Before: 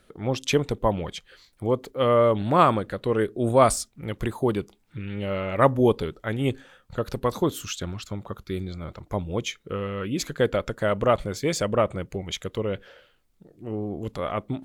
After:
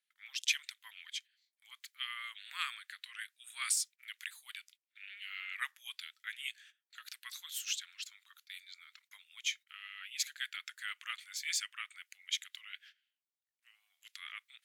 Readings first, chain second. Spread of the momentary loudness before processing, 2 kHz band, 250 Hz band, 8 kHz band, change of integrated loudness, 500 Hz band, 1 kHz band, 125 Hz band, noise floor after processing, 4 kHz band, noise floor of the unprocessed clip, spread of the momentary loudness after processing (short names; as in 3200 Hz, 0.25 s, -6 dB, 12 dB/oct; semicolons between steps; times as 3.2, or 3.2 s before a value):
15 LU, -5.5 dB, under -40 dB, -3.0 dB, -14.5 dB, under -40 dB, -26.0 dB, under -40 dB, under -85 dBFS, -3.0 dB, -64 dBFS, 19 LU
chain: gate -44 dBFS, range -19 dB; steep high-pass 1800 Hz 36 dB/oct; gain -3 dB